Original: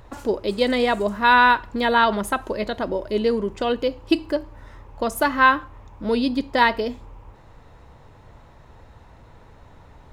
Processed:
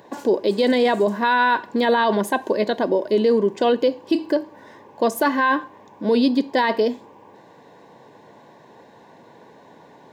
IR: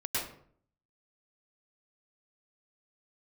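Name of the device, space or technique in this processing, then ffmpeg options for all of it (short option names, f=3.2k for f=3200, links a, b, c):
PA system with an anti-feedback notch: -af "highpass=f=180:w=0.5412,highpass=f=180:w=1.3066,asuperstop=centerf=1300:order=8:qfactor=5.4,equalizer=f=400:t=o:w=0.67:g=3,equalizer=f=2.5k:t=o:w=0.67:g=-4,equalizer=f=10k:t=o:w=0.67:g=-6,alimiter=limit=-14.5dB:level=0:latency=1:release=11,volume=4.5dB"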